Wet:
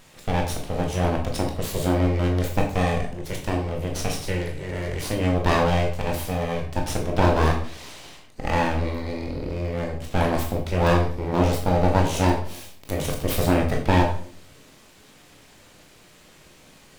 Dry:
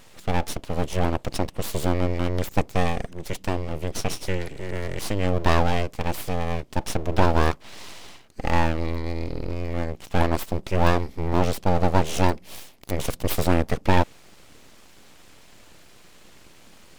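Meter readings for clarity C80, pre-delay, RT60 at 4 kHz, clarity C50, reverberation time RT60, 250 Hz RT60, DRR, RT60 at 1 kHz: 11.0 dB, 16 ms, 0.45 s, 7.5 dB, 0.50 s, 0.65 s, 0.5 dB, 0.45 s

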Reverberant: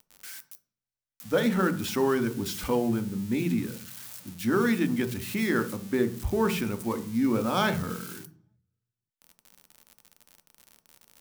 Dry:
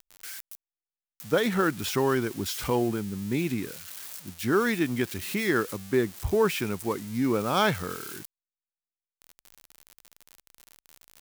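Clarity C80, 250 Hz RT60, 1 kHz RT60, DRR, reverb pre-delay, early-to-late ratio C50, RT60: 20.0 dB, 0.75 s, 0.40 s, 8.0 dB, 3 ms, 14.5 dB, 0.45 s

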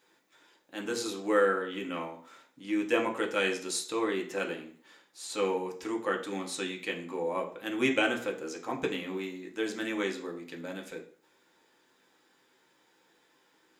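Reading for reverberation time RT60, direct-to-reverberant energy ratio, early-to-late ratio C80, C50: 0.50 s, 1.0 dB, 14.5 dB, 10.5 dB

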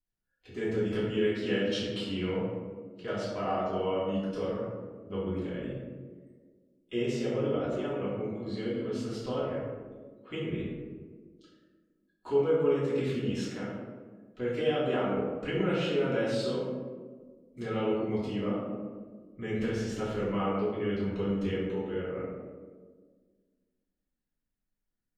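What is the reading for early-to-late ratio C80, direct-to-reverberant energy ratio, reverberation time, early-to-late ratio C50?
2.5 dB, -10.5 dB, 1.6 s, 0.0 dB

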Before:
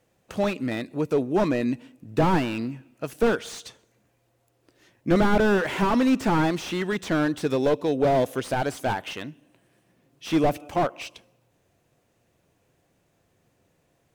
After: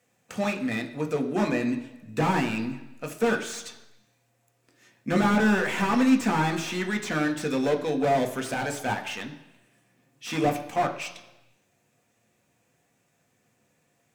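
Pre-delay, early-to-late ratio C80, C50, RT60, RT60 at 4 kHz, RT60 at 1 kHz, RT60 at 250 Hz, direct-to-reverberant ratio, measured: 3 ms, 13.5 dB, 11.0 dB, 1.0 s, 0.95 s, 1.0 s, 0.90 s, 3.0 dB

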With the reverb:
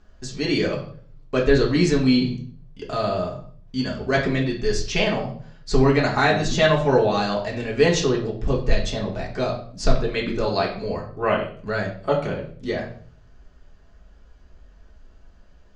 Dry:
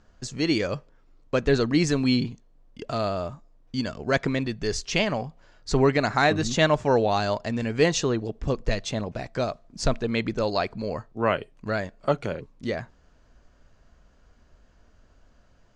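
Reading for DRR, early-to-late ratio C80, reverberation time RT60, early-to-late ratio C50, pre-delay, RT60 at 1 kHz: -3.0 dB, 12.5 dB, 0.50 s, 8.0 dB, 3 ms, 0.45 s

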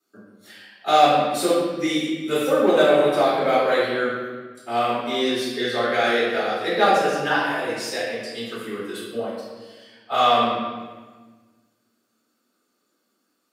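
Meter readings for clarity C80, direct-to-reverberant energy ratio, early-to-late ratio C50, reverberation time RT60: 1.5 dB, -10.0 dB, -1.0 dB, 1.4 s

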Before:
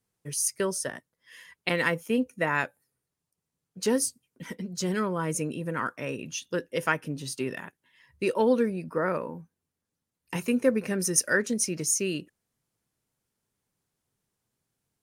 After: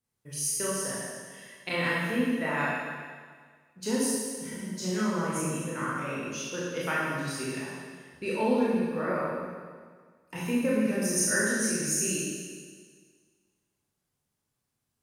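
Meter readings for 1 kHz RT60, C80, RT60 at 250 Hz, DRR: 1.7 s, -0.5 dB, 1.7 s, -7.5 dB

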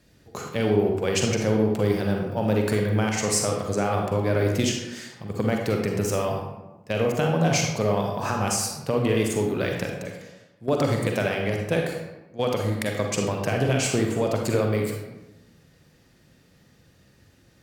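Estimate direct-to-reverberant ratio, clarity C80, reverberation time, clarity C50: 1.0 dB, 5.5 dB, 1.0 s, 2.5 dB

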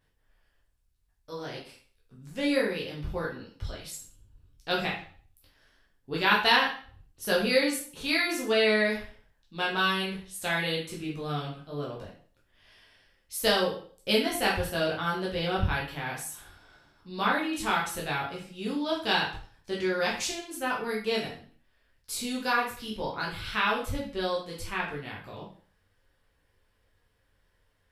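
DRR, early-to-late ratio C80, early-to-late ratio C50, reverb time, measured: -4.5 dB, 10.0 dB, 5.5 dB, 0.45 s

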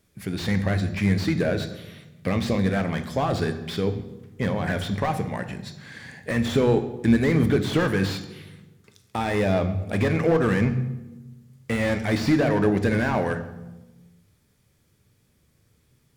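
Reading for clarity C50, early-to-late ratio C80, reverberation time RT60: 11.5 dB, 13.5 dB, 1.1 s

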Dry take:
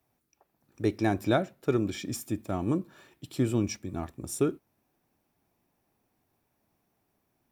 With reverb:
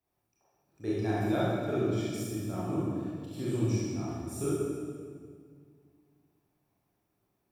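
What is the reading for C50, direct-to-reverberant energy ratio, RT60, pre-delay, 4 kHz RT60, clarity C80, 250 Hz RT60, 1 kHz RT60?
-4.0 dB, -9.0 dB, 2.0 s, 24 ms, 1.5 s, -1.0 dB, 2.6 s, 1.8 s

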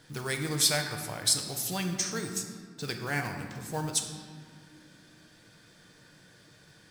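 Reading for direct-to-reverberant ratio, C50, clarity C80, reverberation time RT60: 4.0 dB, 6.0 dB, 7.5 dB, 2.1 s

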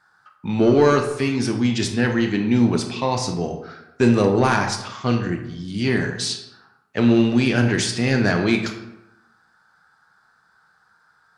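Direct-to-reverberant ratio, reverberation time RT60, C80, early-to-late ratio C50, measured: 4.0 dB, 0.95 s, 10.0 dB, 7.5 dB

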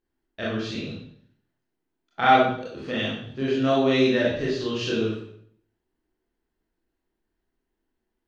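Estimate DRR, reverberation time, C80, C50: -7.0 dB, 0.60 s, 5.5 dB, 1.0 dB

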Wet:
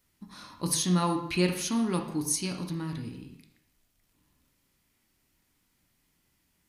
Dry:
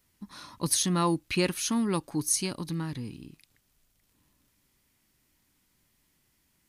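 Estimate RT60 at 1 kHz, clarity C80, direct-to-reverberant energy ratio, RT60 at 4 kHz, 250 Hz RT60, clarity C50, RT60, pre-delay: 0.75 s, 10.5 dB, 3.0 dB, 0.70 s, 0.75 s, 7.0 dB, 0.75 s, 6 ms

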